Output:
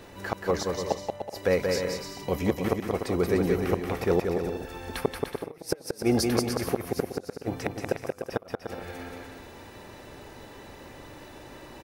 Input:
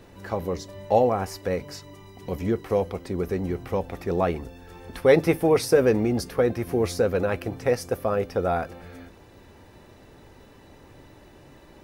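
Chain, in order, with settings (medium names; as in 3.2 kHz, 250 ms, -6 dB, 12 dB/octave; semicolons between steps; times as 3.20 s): bass shelf 330 Hz -7 dB; inverted gate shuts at -17 dBFS, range -37 dB; bouncing-ball echo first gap 180 ms, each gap 0.65×, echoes 5; trim +5.5 dB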